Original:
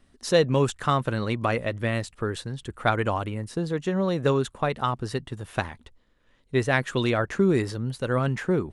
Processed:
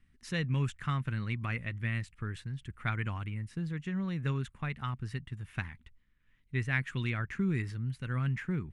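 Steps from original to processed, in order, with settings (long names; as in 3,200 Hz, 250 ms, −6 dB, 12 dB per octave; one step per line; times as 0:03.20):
drawn EQ curve 160 Hz 0 dB, 570 Hz −21 dB, 2,200 Hz +1 dB, 3,900 Hz −11 dB
level −4 dB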